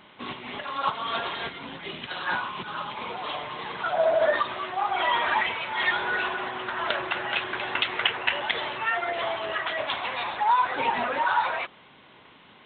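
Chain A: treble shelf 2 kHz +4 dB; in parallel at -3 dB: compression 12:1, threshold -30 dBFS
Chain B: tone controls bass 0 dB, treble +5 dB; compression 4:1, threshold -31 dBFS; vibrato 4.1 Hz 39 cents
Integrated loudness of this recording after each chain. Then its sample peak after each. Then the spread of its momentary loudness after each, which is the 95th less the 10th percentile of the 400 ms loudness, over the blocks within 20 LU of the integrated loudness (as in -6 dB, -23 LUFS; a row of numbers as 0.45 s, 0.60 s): -23.5 LUFS, -33.5 LUFS; -3.0 dBFS, -16.0 dBFS; 8 LU, 5 LU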